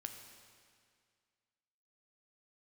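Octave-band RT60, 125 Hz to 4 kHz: 2.1 s, 2.1 s, 2.0 s, 2.1 s, 2.0 s, 1.9 s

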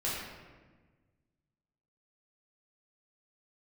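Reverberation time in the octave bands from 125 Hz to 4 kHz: 2.1 s, 1.8 s, 1.5 s, 1.3 s, 1.2 s, 0.85 s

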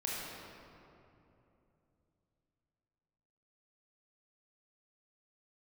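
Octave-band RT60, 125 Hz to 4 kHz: 4.1 s, 3.6 s, 3.2 s, 2.7 s, 2.1 s, 1.5 s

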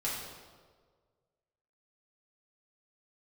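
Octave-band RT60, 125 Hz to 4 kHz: 1.8 s, 1.5 s, 1.8 s, 1.4 s, 1.1 s, 1.1 s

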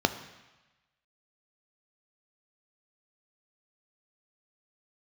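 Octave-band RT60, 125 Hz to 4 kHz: 1.2 s, 1.0 s, 1.0 s, 1.2 s, 1.2 s, 1.2 s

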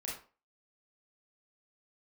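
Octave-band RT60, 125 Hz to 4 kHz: 0.30 s, 0.35 s, 0.40 s, 0.35 s, 0.30 s, 0.25 s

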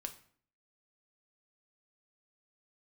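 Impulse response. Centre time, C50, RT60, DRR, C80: 8 ms, 13.5 dB, 0.55 s, 5.5 dB, 17.5 dB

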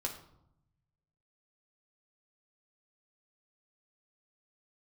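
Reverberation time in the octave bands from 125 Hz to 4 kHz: 1.6 s, 1.1 s, 0.80 s, 0.75 s, 0.50 s, 0.45 s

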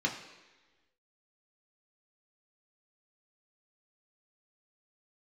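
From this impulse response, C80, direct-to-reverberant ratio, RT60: 10.0 dB, -0.5 dB, 1.2 s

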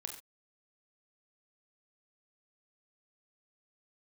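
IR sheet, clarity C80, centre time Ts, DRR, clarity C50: 10.5 dB, 18 ms, 4.0 dB, 8.0 dB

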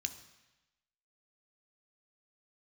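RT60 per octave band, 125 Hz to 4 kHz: 1.0 s, 1.0 s, 0.95 s, 1.1 s, 1.1 s, 1.1 s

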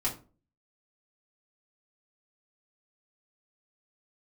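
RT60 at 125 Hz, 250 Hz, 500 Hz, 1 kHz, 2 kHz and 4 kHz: 0.50 s, 0.50 s, 0.40 s, 0.30 s, 0.25 s, 0.25 s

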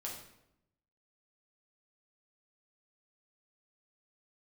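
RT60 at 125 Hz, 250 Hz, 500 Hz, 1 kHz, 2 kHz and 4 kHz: 1.2 s, 1.0 s, 0.85 s, 0.75 s, 0.70 s, 0.60 s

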